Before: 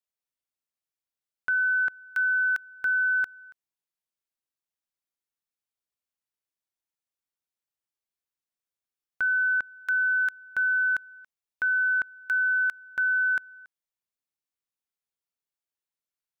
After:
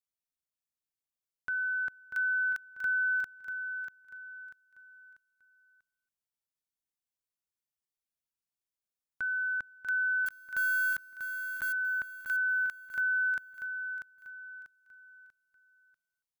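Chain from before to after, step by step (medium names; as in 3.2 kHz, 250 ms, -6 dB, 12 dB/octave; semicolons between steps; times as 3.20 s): 10.26–11.73 s: block-companded coder 3-bit; tone controls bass +7 dB, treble +5 dB; on a send: feedback delay 641 ms, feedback 36%, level -8 dB; on the sum: trim -8 dB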